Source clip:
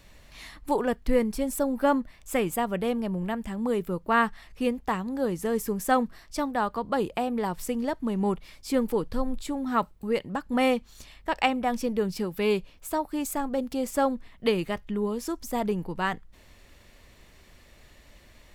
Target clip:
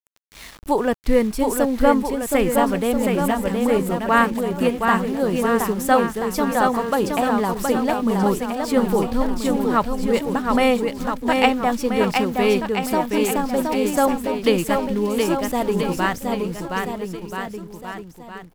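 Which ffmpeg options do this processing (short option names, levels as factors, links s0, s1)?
-af "aeval=exprs='val(0)*gte(abs(val(0)),0.0075)':c=same,aecho=1:1:720|1332|1852|2294|2670:0.631|0.398|0.251|0.158|0.1,volume=2"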